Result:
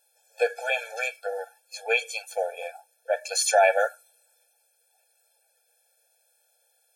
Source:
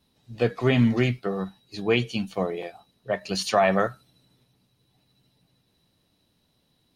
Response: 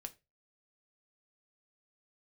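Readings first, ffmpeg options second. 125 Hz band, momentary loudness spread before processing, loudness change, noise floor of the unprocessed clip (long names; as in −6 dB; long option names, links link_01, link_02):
below −40 dB, 12 LU, −1.0 dB, −70 dBFS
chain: -filter_complex "[0:a]crystalizer=i=5:c=0,equalizer=frequency=125:width_type=o:width=1:gain=4,equalizer=frequency=250:width_type=o:width=1:gain=7,equalizer=frequency=500:width_type=o:width=1:gain=4,equalizer=frequency=1000:width_type=o:width=1:gain=10,equalizer=frequency=2000:width_type=o:width=1:gain=7,equalizer=frequency=4000:width_type=o:width=1:gain=-5,equalizer=frequency=8000:width_type=o:width=1:gain=9,asplit=2[link_01][link_02];[1:a]atrim=start_sample=2205,highshelf=frequency=5300:gain=-8[link_03];[link_02][link_03]afir=irnorm=-1:irlink=0,volume=-12dB[link_04];[link_01][link_04]amix=inputs=2:normalize=0,afftfilt=real='re*eq(mod(floor(b*sr/1024/450),2),1)':imag='im*eq(mod(floor(b*sr/1024/450),2),1)':win_size=1024:overlap=0.75,volume=-8dB"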